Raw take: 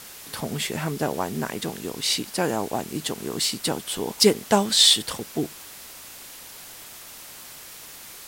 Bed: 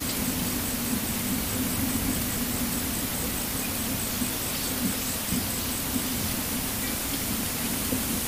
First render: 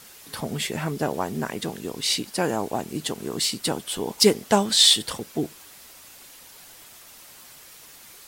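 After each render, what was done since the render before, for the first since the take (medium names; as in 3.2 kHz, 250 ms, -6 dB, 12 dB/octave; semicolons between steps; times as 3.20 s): noise reduction 6 dB, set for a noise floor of -43 dBFS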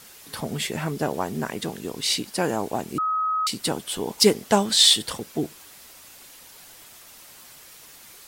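2.98–3.47 s: bleep 1.27 kHz -21 dBFS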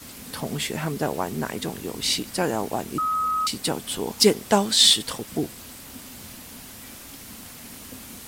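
add bed -14 dB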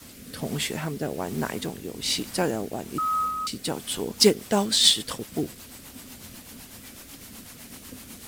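rotary cabinet horn 1.2 Hz, later 8 Hz, at 3.80 s; companded quantiser 6-bit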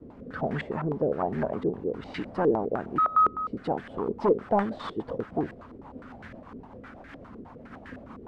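saturation -22 dBFS, distortion -7 dB; step-sequenced low-pass 9.8 Hz 410–1700 Hz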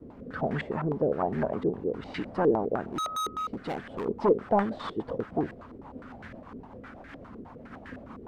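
2.83–4.06 s: hard clipper -29 dBFS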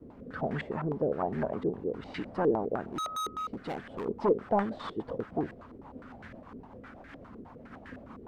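trim -3 dB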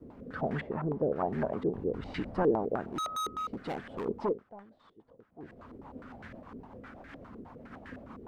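0.60–1.16 s: low-pass 1.6 kHz 6 dB/octave; 1.75–2.43 s: bass shelf 110 Hz +11 dB; 4.15–5.67 s: dip -22.5 dB, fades 0.29 s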